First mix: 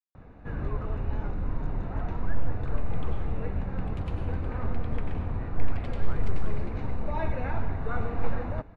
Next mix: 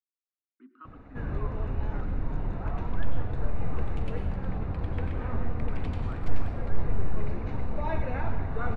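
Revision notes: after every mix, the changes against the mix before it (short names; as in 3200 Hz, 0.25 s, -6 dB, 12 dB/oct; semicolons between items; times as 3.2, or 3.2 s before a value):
first sound: entry +0.70 s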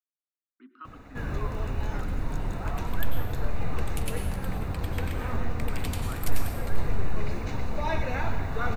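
master: remove tape spacing loss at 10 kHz 34 dB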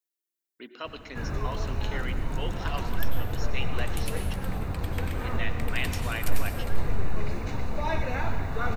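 speech: remove double band-pass 580 Hz, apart 2.2 oct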